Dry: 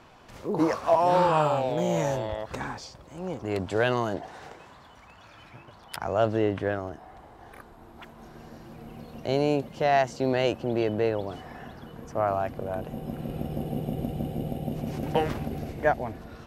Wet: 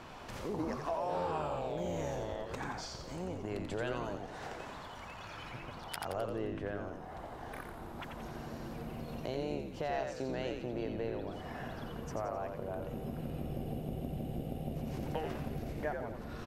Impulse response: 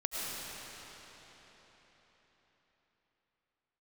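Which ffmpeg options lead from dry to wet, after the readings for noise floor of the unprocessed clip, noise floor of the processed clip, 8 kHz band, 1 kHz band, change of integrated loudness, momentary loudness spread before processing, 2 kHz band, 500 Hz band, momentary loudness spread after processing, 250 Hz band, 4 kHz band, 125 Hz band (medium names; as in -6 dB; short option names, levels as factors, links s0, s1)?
-51 dBFS, -47 dBFS, -6.5 dB, -12.0 dB, -12.0 dB, 20 LU, -10.5 dB, -11.5 dB, 9 LU, -9.5 dB, -8.5 dB, -8.5 dB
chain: -filter_complex "[0:a]acompressor=threshold=0.00631:ratio=3,asplit=2[s0][s1];[s1]asplit=6[s2][s3][s4][s5][s6][s7];[s2]adelay=87,afreqshift=-87,volume=0.562[s8];[s3]adelay=174,afreqshift=-174,volume=0.282[s9];[s4]adelay=261,afreqshift=-261,volume=0.141[s10];[s5]adelay=348,afreqshift=-348,volume=0.07[s11];[s6]adelay=435,afreqshift=-435,volume=0.0351[s12];[s7]adelay=522,afreqshift=-522,volume=0.0176[s13];[s8][s9][s10][s11][s12][s13]amix=inputs=6:normalize=0[s14];[s0][s14]amix=inputs=2:normalize=0,volume=1.41"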